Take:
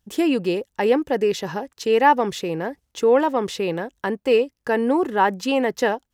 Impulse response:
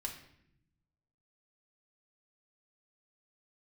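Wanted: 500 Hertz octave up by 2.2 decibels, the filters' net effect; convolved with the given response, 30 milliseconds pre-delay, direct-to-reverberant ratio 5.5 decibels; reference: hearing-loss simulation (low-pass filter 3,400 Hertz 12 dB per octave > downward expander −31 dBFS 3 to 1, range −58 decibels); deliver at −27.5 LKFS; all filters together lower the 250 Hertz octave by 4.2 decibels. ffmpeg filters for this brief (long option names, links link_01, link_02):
-filter_complex "[0:a]equalizer=frequency=250:width_type=o:gain=-7.5,equalizer=frequency=500:width_type=o:gain=4.5,asplit=2[link_01][link_02];[1:a]atrim=start_sample=2205,adelay=30[link_03];[link_02][link_03]afir=irnorm=-1:irlink=0,volume=-4.5dB[link_04];[link_01][link_04]amix=inputs=2:normalize=0,lowpass=3400,agate=range=-58dB:threshold=-31dB:ratio=3,volume=-7.5dB"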